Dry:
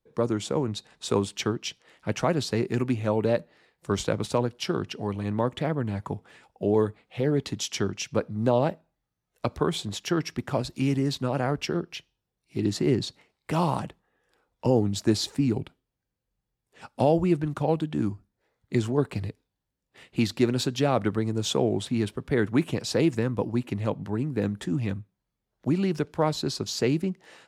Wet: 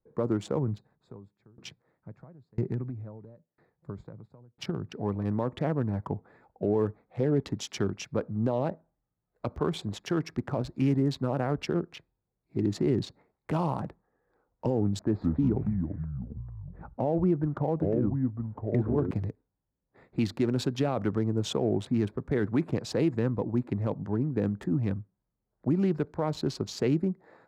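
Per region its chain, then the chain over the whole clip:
0.58–4.92 s: peaking EQ 130 Hz +10.5 dB 1.3 oct + compression, threshold -21 dBFS + sawtooth tremolo in dB decaying 1 Hz, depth 33 dB
14.99–19.11 s: low-pass 1.8 kHz + ever faster or slower copies 145 ms, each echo -5 st, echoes 3, each echo -6 dB
whole clip: local Wiener filter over 15 samples; peak limiter -17 dBFS; treble shelf 2.6 kHz -8 dB

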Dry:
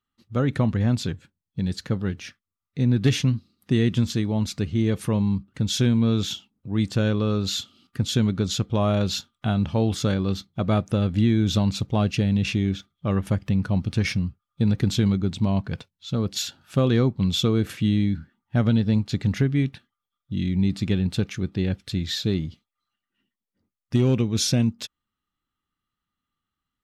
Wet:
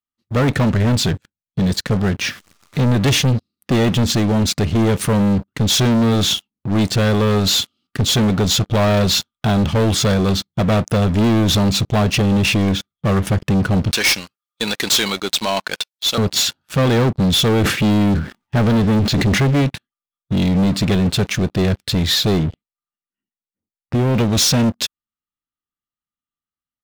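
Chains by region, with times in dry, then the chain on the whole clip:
2.21–2.84 s: jump at every zero crossing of -38.5 dBFS + low-pass 7.6 kHz
13.92–16.18 s: high-pass 590 Hz + treble shelf 2.1 kHz +12 dB
17.60–19.61 s: companding laws mixed up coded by mu + treble shelf 7.8 kHz -10.5 dB + decay stretcher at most 140 dB/s
22.43–24.15 s: compression 3:1, threshold -22 dBFS + distance through air 380 m
whole clip: bass shelf 160 Hz -3 dB; waveshaping leveller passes 5; trim -3 dB

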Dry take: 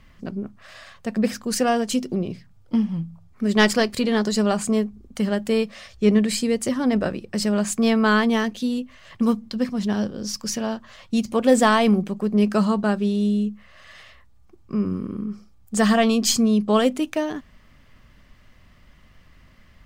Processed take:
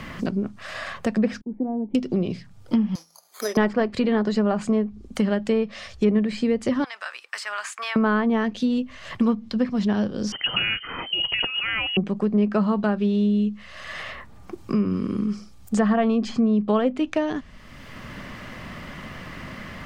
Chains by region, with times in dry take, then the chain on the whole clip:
1.41–1.95 s: expander -30 dBFS + cascade formant filter u + distance through air 410 m
2.95–3.57 s: high-pass 490 Hz 24 dB/octave + careless resampling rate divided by 8×, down filtered, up zero stuff
6.84–7.96 s: high-pass 1.1 kHz 24 dB/octave + compression 2:1, threshold -36 dBFS
10.32–11.97 s: compressor with a negative ratio -26 dBFS + frequency inversion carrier 3.1 kHz
whole clip: low-pass that closes with the level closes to 1.5 kHz, closed at -15.5 dBFS; three bands compressed up and down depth 70%

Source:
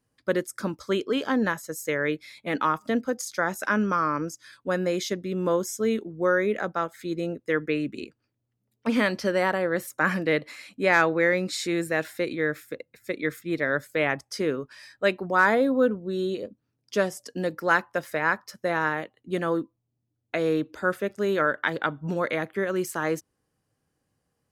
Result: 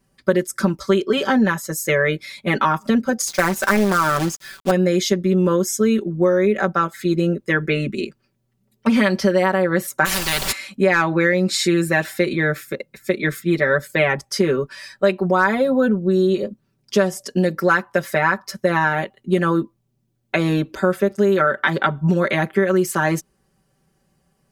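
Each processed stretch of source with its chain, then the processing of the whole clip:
3.27–4.71 s: companded quantiser 4-bit + loudspeaker Doppler distortion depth 0.77 ms
10.04–10.51 s: tilt EQ +3 dB/octave + added noise pink -48 dBFS + spectrum-flattening compressor 4:1
whole clip: bass shelf 170 Hz +6 dB; comb 5.2 ms, depth 98%; compression 4:1, threshold -21 dBFS; trim +7.5 dB

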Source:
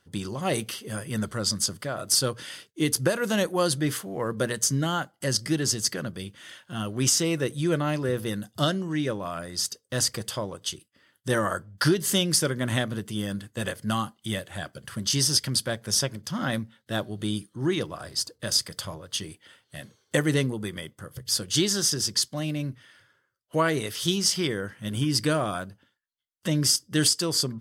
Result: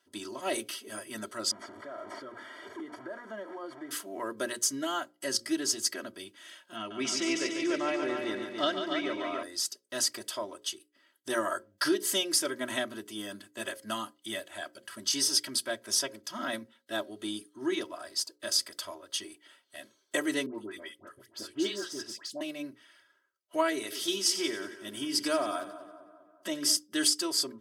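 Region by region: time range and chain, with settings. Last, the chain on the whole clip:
1.51–3.91 s: one-bit delta coder 64 kbps, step -28.5 dBFS + Savitzky-Golay filter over 41 samples + compression 3:1, threshold -34 dBFS
6.76–9.43 s: low-pass 4.7 kHz + peaking EQ 2.2 kHz +8.5 dB 0.27 oct + multi-head delay 143 ms, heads first and second, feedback 46%, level -7.5 dB
20.46–22.41 s: de-esser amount 50% + treble shelf 4.2 kHz -10.5 dB + phase dispersion highs, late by 90 ms, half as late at 1.3 kHz
23.72–26.77 s: high-pass 92 Hz + two-band feedback delay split 1.5 kHz, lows 199 ms, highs 91 ms, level -13 dB
whole clip: high-pass 300 Hz 12 dB/octave; hum notches 60/120/180/240/300/360/420/480/540 Hz; comb 3.1 ms, depth 96%; trim -6.5 dB

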